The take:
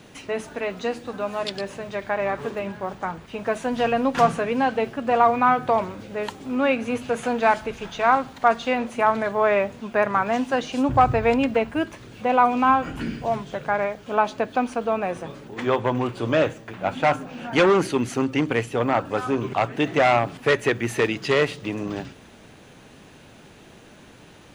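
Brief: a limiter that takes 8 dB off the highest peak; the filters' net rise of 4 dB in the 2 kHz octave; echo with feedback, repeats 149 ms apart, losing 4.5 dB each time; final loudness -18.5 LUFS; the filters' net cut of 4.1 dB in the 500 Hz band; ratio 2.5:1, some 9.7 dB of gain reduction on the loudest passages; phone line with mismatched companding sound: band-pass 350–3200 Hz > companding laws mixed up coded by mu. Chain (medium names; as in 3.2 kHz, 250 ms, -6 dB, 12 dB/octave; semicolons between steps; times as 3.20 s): peaking EQ 500 Hz -4.5 dB; peaking EQ 2 kHz +6 dB; compression 2.5:1, threshold -27 dBFS; peak limiter -19.5 dBFS; band-pass 350–3200 Hz; feedback delay 149 ms, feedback 60%, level -4.5 dB; companding laws mixed up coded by mu; trim +12 dB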